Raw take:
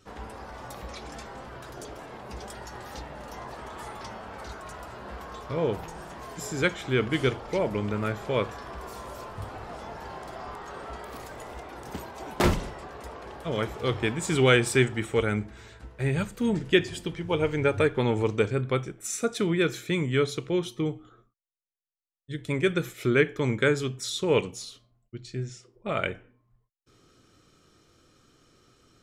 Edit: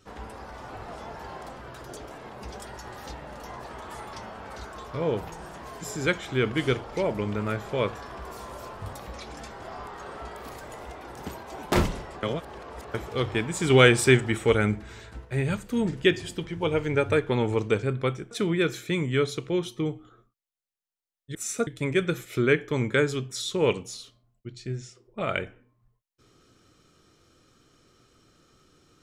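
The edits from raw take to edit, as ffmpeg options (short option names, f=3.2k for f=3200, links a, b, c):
-filter_complex "[0:a]asplit=13[a][b][c][d][e][f][g][h][i][j][k][l][m];[a]atrim=end=0.682[n];[b]atrim=start=9.488:end=10.302[o];[c]atrim=start=1.368:end=4.642[p];[d]atrim=start=5.318:end=9.492[q];[e]atrim=start=0.678:end=1.372[r];[f]atrim=start=10.298:end=12.912[s];[g]atrim=start=12.908:end=13.622,asetpts=PTS-STARTPTS,areverse[t];[h]atrim=start=13.618:end=14.382[u];[i]atrim=start=14.378:end=15.932,asetpts=PTS-STARTPTS,volume=3.5dB[v];[j]atrim=start=15.928:end=18.992[w];[k]atrim=start=19.308:end=22.352[x];[l]atrim=start=18.988:end=19.312[y];[m]atrim=start=22.348[z];[n][o]acrossfade=d=0.004:c1=hsin:c2=hsin[aa];[aa][p]acrossfade=d=0.004:c1=hsin:c2=hsin[ab];[ab][q]acrossfade=d=0.004:c1=hsin:c2=hsin[ac];[ac][r]acrossfade=d=0.004:c1=hsin:c2=hsin[ad];[ad][s]acrossfade=d=0.004:c1=hsin:c2=hsin[ae];[ae][t]acrossfade=d=0.004:c1=hsin:c2=hsin[af];[af][u]acrossfade=d=0.004:c1=hsin:c2=hsin[ag];[ag][v]acrossfade=d=0.004:c1=hsin:c2=hsin[ah];[ah][w]acrossfade=d=0.004:c1=hsin:c2=hsin[ai];[ai][x]acrossfade=d=0.004:c1=hsin:c2=hsin[aj];[aj][y]acrossfade=d=0.004:c1=hsin:c2=hsin[ak];[ak][z]acrossfade=d=0.004:c1=hsin:c2=hsin"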